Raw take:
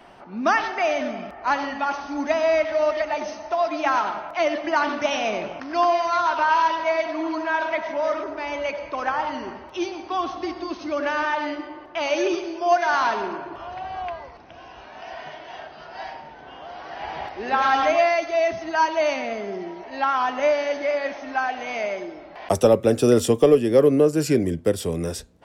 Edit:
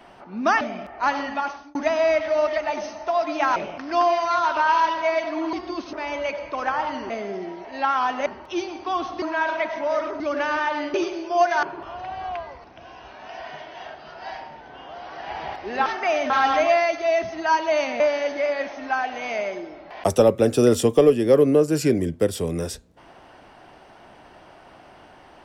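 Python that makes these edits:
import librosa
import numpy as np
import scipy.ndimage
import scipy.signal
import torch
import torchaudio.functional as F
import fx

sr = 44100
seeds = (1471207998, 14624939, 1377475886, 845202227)

y = fx.edit(x, sr, fx.move(start_s=0.61, length_s=0.44, to_s=17.59),
    fx.fade_out_span(start_s=1.8, length_s=0.39),
    fx.cut(start_s=4.0, length_s=1.38),
    fx.swap(start_s=7.35, length_s=0.98, other_s=10.46, other_length_s=0.4),
    fx.cut(start_s=11.6, length_s=0.65),
    fx.cut(start_s=12.94, length_s=0.42),
    fx.move(start_s=19.29, length_s=1.16, to_s=9.5), tone=tone)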